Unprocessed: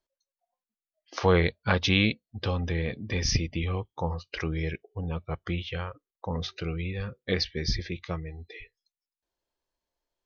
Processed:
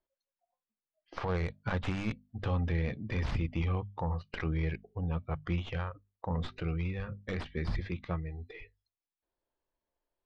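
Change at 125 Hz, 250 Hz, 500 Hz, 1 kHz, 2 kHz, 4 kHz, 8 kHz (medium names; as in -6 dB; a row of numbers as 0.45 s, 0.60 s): -3.0 dB, -5.5 dB, -8.5 dB, -5.5 dB, -9.5 dB, -16.5 dB, no reading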